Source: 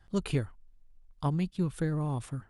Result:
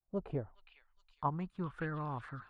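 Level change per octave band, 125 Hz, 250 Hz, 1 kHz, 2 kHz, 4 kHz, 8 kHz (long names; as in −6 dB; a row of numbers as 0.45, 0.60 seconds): −10.0 dB, −9.5 dB, +1.5 dB, −1.5 dB, below −15 dB, below −25 dB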